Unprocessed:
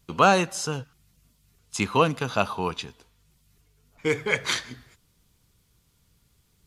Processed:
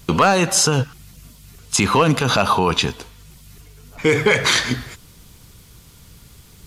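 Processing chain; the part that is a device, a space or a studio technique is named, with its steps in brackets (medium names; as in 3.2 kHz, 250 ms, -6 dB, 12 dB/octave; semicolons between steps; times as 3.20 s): loud club master (compression 1.5:1, threshold -29 dBFS, peak gain reduction 6.5 dB; hard clipper -15.5 dBFS, distortion -19 dB; loudness maximiser +24.5 dB); trim -5 dB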